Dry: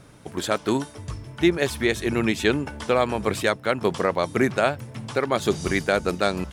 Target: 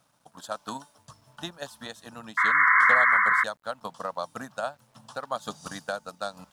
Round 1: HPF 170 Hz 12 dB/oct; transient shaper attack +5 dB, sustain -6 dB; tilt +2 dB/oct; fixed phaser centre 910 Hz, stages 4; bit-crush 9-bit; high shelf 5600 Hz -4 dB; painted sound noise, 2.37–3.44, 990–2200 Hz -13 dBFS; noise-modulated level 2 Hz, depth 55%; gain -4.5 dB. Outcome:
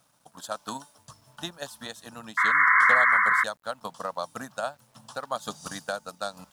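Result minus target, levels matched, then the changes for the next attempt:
8000 Hz band +4.0 dB
change: high shelf 5600 Hz -10 dB

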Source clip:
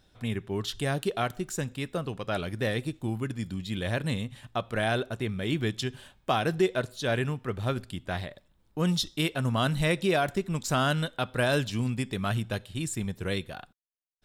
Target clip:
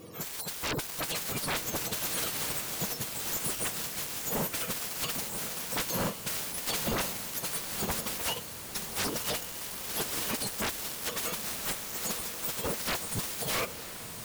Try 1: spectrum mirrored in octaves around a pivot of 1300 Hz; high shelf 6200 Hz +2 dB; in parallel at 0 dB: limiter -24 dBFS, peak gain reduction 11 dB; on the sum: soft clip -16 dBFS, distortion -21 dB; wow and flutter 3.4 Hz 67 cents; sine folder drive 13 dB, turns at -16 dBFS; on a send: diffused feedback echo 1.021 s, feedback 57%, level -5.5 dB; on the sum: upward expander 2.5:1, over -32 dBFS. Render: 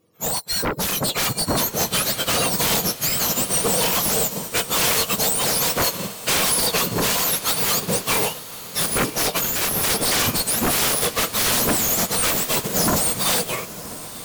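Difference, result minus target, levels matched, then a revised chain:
sine folder: distortion -20 dB
spectrum mirrored in octaves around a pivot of 1300 Hz; high shelf 6200 Hz +2 dB; in parallel at 0 dB: limiter -24 dBFS, peak gain reduction 11 dB; on the sum: soft clip -16 dBFS, distortion -21 dB; wow and flutter 3.4 Hz 67 cents; sine folder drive 13 dB, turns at -26.5 dBFS; on a send: diffused feedback echo 1.021 s, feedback 57%, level -5.5 dB; on the sum: upward expander 2.5:1, over -32 dBFS

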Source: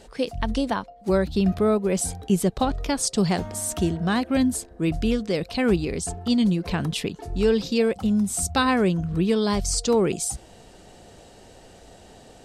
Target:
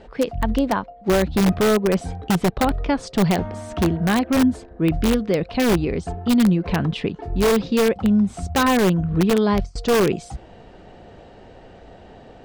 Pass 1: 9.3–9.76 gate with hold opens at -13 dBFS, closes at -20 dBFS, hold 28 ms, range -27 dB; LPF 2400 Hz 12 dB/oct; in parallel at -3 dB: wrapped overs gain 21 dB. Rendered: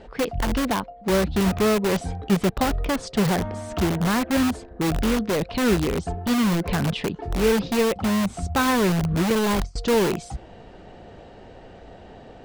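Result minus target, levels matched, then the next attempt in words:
wrapped overs: distortion +22 dB
9.3–9.76 gate with hold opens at -13 dBFS, closes at -20 dBFS, hold 28 ms, range -27 dB; LPF 2400 Hz 12 dB/oct; in parallel at -3 dB: wrapped overs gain 14.5 dB

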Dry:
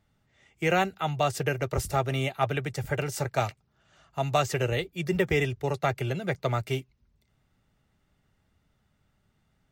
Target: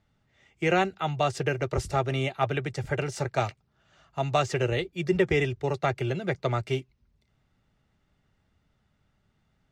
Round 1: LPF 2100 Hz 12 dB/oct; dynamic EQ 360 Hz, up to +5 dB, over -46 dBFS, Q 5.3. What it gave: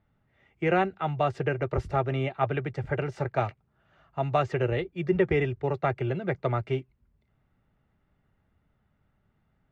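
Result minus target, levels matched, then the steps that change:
8000 Hz band -18.0 dB
change: LPF 6800 Hz 12 dB/oct

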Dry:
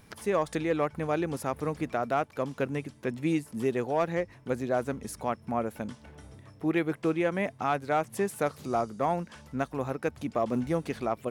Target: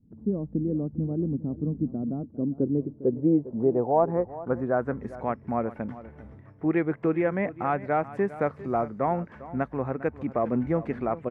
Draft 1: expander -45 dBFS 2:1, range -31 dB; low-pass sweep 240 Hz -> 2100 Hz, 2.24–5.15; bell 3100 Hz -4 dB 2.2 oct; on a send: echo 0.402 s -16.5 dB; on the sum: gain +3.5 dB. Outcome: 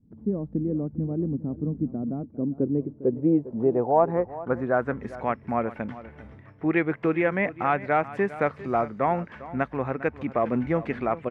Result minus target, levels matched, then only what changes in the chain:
4000 Hz band +9.0 dB
change: bell 3100 Hz -14.5 dB 2.2 oct

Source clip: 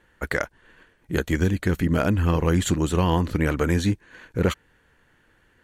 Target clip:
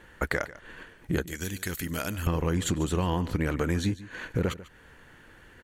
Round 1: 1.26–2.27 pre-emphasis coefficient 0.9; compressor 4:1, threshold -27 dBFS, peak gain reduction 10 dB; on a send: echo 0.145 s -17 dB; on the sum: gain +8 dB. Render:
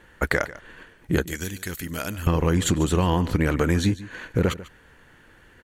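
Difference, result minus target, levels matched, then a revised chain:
compressor: peak gain reduction -6 dB
1.26–2.27 pre-emphasis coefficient 0.9; compressor 4:1, threshold -35 dBFS, peak gain reduction 16 dB; on a send: echo 0.145 s -17 dB; on the sum: gain +8 dB

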